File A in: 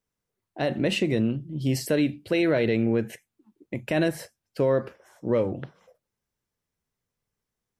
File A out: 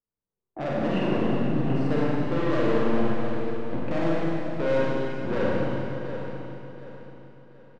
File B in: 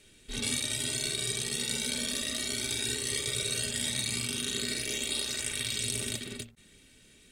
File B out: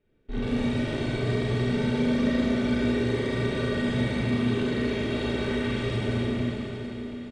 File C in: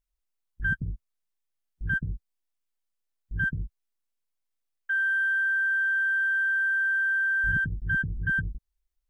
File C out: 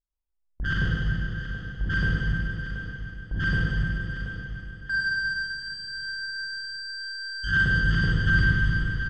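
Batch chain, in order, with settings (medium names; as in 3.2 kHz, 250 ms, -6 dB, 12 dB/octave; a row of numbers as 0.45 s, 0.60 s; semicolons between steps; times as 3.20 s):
gate -51 dBFS, range -18 dB; low-pass 1.1 kHz 12 dB/octave; in parallel at -1 dB: compression, threshold -36 dBFS; on the sum: saturation -28.5 dBFS; on a send: feedback delay 730 ms, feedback 36%, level -11.5 dB; on the sum: Schroeder reverb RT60 3 s, combs from 33 ms, DRR -6 dB; normalise loudness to -27 LUFS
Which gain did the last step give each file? +0.5 dB, +3.0 dB, +4.5 dB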